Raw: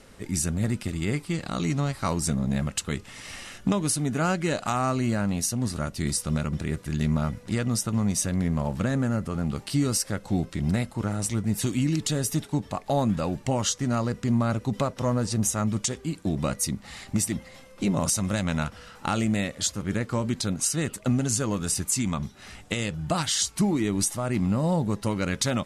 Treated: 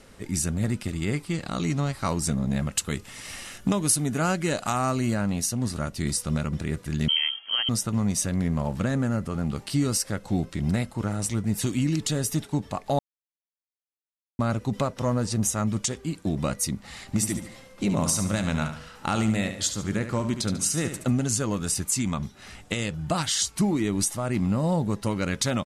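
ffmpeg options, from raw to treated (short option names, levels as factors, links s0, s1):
-filter_complex "[0:a]asettb=1/sr,asplit=3[s0][s1][s2];[s0]atrim=end=2.724[s3];[s1]atrim=start=2.72:end=5.14,asetpts=PTS-STARTPTS,afade=t=in:d=0.004:c=qsin,afade=t=out:st=2.416:d=0.004:c=qsin,highshelf=f=9900:g=11[s4];[s2]atrim=start=5.136[s5];[s3][s4]acrossfade=d=0.004:c1=hsin:c2=qsin[s6];[s6][s5]acrossfade=d=0.004:c1=qsin:c2=hsin,asettb=1/sr,asplit=3[s7][s8][s9];[s7]atrim=end=7.084[s10];[s8]atrim=start=7.08:end=7.69,asetpts=PTS-STARTPTS,afade=t=in:d=0.004:c=qsin,afade=t=out:st=0.606:d=0.004:c=qsin,lowpass=f=2800:t=q:w=0.5098,lowpass=f=2800:t=q:w=0.6013,lowpass=f=2800:t=q:w=0.9,lowpass=f=2800:t=q:w=2.563,afreqshift=-3300[s11];[s9]atrim=start=7.686[s12];[s10][s11]acrossfade=d=0.004:c1=hsin:c2=qsin[s13];[s13][s12]acrossfade=d=0.004:c1=qsin:c2=hsin,asplit=3[s14][s15][s16];[s14]afade=t=out:st=17.12:d=0.02[s17];[s15]aecho=1:1:72|144|216|288:0.355|0.138|0.054|0.021,afade=t=in:st=17.12:d=0.02,afade=t=out:st=21.11:d=0.02[s18];[s16]afade=t=in:st=21.11:d=0.02[s19];[s17][s18][s19]amix=inputs=3:normalize=0,asplit=3[s20][s21][s22];[s20]atrim=end=12.99,asetpts=PTS-STARTPTS,afade=t=out:st=12.986:d=0.004:c=hsin[s23];[s21]atrim=start=12.99:end=14.39,asetpts=PTS-STARTPTS,volume=0[s24];[s22]atrim=start=14.39,asetpts=PTS-STARTPTS,afade=t=in:d=0.004:c=hsin[s25];[s23][s24][s25]concat=n=3:v=0:a=1"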